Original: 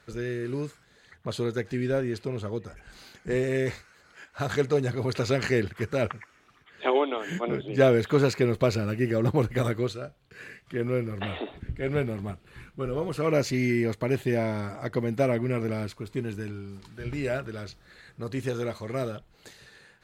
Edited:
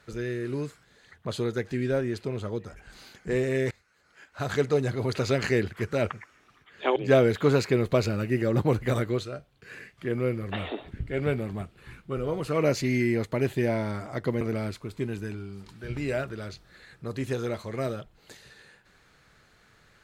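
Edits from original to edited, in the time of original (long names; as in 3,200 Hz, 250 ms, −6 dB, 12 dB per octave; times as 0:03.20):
0:03.71–0:04.58: fade in, from −22 dB
0:06.96–0:07.65: remove
0:15.10–0:15.57: remove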